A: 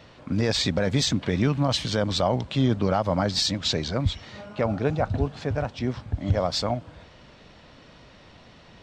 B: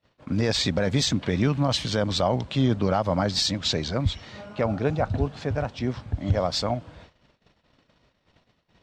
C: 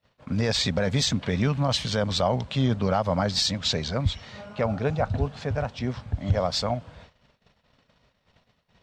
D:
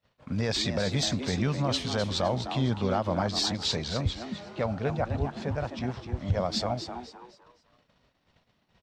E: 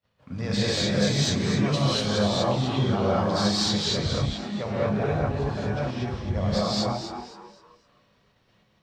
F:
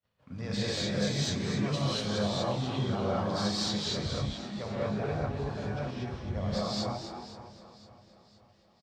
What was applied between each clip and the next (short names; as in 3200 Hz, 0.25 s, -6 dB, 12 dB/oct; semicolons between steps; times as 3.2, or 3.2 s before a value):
gate -47 dBFS, range -31 dB
bell 320 Hz -10.5 dB 0.33 oct
frequency-shifting echo 0.256 s, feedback 32%, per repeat +120 Hz, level -9 dB; gain -4 dB
non-linear reverb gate 0.26 s rising, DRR -8 dB; gain -4.5 dB
feedback echo 0.515 s, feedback 50%, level -16.5 dB; gain -7 dB